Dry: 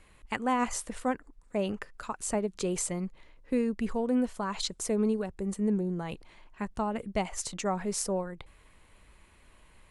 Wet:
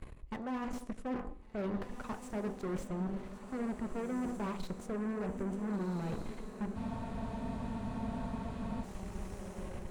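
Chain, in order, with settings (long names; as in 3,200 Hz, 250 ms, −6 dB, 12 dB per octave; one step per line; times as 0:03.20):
tilt shelving filter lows +9 dB, about 940 Hz
hum removal 49.11 Hz, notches 21
reversed playback
downward compressor 6 to 1, threshold −41 dBFS, peak gain reduction 22 dB
reversed playback
soft clipping −36 dBFS, distortion −18 dB
harmonic generator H 6 −13 dB, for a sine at −36 dBFS
feedback delay with all-pass diffusion 1,493 ms, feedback 54%, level −10 dB
on a send at −16.5 dB: convolution reverb RT60 0.95 s, pre-delay 3 ms
on the sum: frozen spectrum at 0:06.77, 2.07 s
slew-rate limiting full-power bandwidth 9.1 Hz
level +5.5 dB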